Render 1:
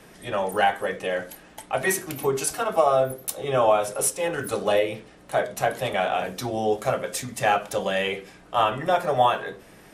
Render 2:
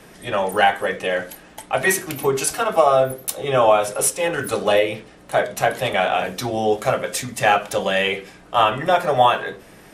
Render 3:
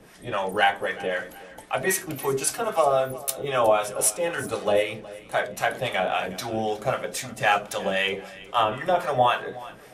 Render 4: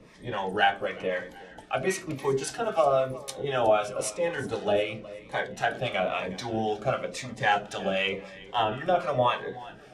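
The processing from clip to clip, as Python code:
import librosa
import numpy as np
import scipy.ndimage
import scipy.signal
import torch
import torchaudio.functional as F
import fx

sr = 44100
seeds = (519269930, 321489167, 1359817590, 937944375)

y1 = fx.dynamic_eq(x, sr, hz=2500.0, q=0.7, threshold_db=-39.0, ratio=4.0, max_db=3)
y1 = y1 * librosa.db_to_amplitude(4.0)
y2 = fx.harmonic_tremolo(y1, sr, hz=3.8, depth_pct=70, crossover_hz=750.0)
y2 = fx.echo_feedback(y2, sr, ms=365, feedback_pct=39, wet_db=-19.0)
y2 = y2 * librosa.db_to_amplitude(-2.0)
y3 = fx.air_absorb(y2, sr, metres=92.0)
y3 = fx.notch_cascade(y3, sr, direction='falling', hz=0.98)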